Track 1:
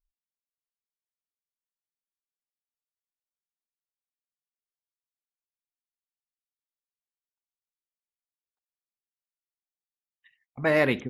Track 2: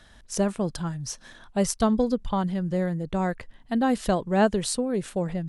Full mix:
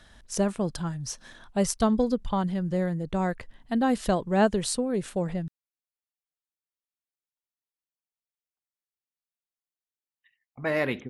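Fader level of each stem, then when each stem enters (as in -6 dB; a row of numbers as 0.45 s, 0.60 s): -4.5 dB, -1.0 dB; 0.00 s, 0.00 s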